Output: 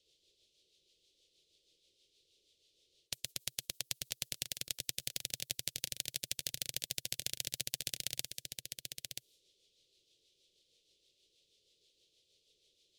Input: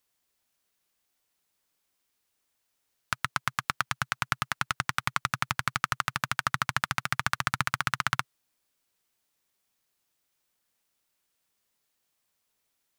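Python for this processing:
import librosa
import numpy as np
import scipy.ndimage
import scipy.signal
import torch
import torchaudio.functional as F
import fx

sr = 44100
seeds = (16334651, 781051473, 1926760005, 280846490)

p1 = scipy.signal.sosfilt(scipy.signal.cheby1(3, 1.0, [360.0, 3500.0], 'bandstop', fs=sr, output='sos'), x)
p2 = fx.low_shelf_res(p1, sr, hz=370.0, db=-13.5, q=3.0)
p3 = fx.env_lowpass(p2, sr, base_hz=2900.0, full_db=-44.5)
p4 = fx.rotary(p3, sr, hz=6.3)
p5 = p4 + fx.echo_single(p4, sr, ms=981, db=-12.5, dry=0)
p6 = fx.spectral_comp(p5, sr, ratio=2.0)
y = F.gain(torch.from_numpy(p6), 3.5).numpy()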